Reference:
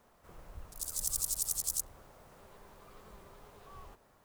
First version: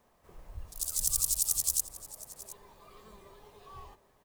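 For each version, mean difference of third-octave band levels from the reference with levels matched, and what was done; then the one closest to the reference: 5.5 dB: spectral noise reduction 7 dB; notch 1400 Hz, Q 8.2; echo 0.72 s -17.5 dB; gain +5 dB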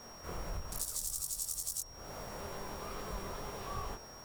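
10.5 dB: compressor 8:1, threshold -47 dBFS, peak gain reduction 19 dB; chorus 2.3 Hz, delay 20 ms, depth 6.1 ms; whine 5600 Hz -69 dBFS; gain +16 dB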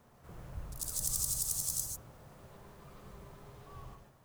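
2.5 dB: bell 130 Hz +11 dB 1.4 oct; vocal rider; non-linear reverb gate 0.17 s rising, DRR 4 dB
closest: third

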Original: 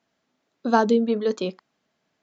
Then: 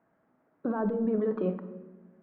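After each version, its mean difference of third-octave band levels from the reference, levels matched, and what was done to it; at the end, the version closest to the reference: 8.0 dB: LPF 1600 Hz 24 dB/oct; negative-ratio compressor -26 dBFS, ratio -1; limiter -21 dBFS, peak gain reduction 7.5 dB; shoebox room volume 700 m³, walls mixed, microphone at 0.59 m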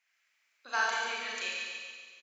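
15.0 dB: resonant high-pass 2300 Hz, resonance Q 3.7; bell 3400 Hz -11 dB 1.3 oct; on a send: feedback echo 0.141 s, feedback 54%, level -6 dB; on the sum: Schroeder reverb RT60 1.4 s, combs from 29 ms, DRR -4 dB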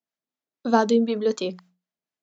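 1.5 dB: gate with hold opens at -40 dBFS; high shelf 5000 Hz +7 dB; notches 60/120/180 Hz; harmonic tremolo 4 Hz, depth 50%, crossover 710 Hz; gain +2 dB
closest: third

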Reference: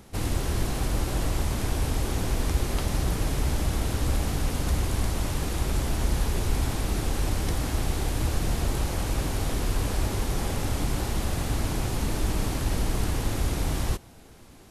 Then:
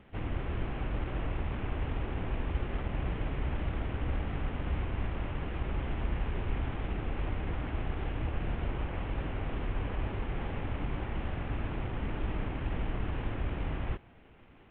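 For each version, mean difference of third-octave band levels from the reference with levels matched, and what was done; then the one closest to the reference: 10.0 dB: CVSD 16 kbps; wow and flutter 15 cents; gain -6.5 dB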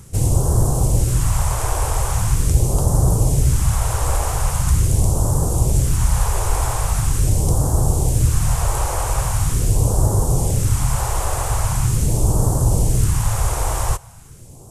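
6.5 dB: graphic EQ 125/250/500/1000/2000/4000/8000 Hz +10/-7/+5/+8/-4/-9/+9 dB; hard clip -11.5 dBFS, distortion -52 dB; phaser stages 2, 0.42 Hz, lowest notch 180–2200 Hz; gain +6.5 dB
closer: second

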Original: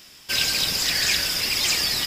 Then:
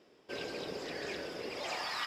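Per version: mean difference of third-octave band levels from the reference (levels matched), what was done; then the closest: 9.0 dB: band-pass sweep 430 Hz -> 1200 Hz, 1.47–2; gain +2.5 dB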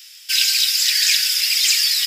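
13.0 dB: Bessel high-pass 2600 Hz, order 6; gain +7 dB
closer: first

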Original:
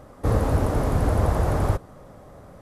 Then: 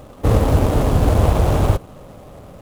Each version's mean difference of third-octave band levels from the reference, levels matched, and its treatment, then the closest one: 2.0 dB: median filter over 25 samples; high shelf 4300 Hz +9 dB; gain +6.5 dB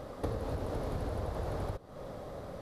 6.5 dB: graphic EQ 500/4000/8000 Hz +5/+8/-3 dB; compressor 16:1, threshold -32 dBFS, peak gain reduction 18.5 dB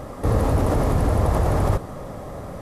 4.0 dB: notch 1500 Hz, Q 15; in parallel at -0.5 dB: negative-ratio compressor -28 dBFS, ratio -0.5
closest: first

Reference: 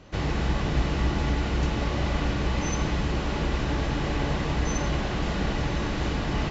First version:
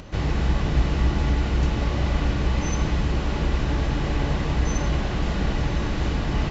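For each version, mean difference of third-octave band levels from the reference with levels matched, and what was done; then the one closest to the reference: 1.5 dB: low shelf 130 Hz +6 dB; upward compressor, threshold -34 dBFS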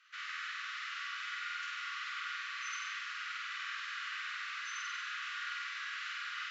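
23.0 dB: steep high-pass 1200 Hz 96 dB/oct; high shelf 3800 Hz -12 dB; flutter echo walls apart 8.3 m, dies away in 0.92 s; gain -3.5 dB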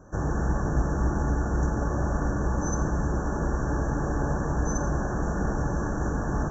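7.0 dB: brick-wall FIR band-stop 1800–5500 Hz; tape echo 0.327 s, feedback 86%, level -18 dB, low-pass 3500 Hz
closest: first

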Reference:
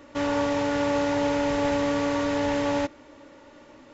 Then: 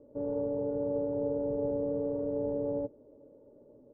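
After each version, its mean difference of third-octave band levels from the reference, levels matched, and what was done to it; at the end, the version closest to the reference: 11.5 dB: ladder low-pass 530 Hz, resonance 65%; bell 120 Hz +11 dB 0.46 oct; comb 4.8 ms, depth 31%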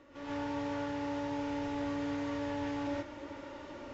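5.5 dB: reverse; compressor 6:1, threshold -39 dBFS, peak gain reduction 17 dB; reverse; air absorption 75 m; non-linear reverb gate 0.17 s rising, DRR -6.5 dB; gain -3.5 dB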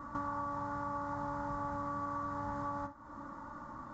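8.5 dB: EQ curve 130 Hz 0 dB, 200 Hz +3 dB, 440 Hz -18 dB, 1200 Hz +7 dB, 2600 Hz -29 dB, 4600 Hz -17 dB, 8200 Hz -14 dB; non-linear reverb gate 0.1 s falling, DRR 6 dB; compressor 5:1, threshold -44 dBFS, peak gain reduction 18.5 dB; gain +5.5 dB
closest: second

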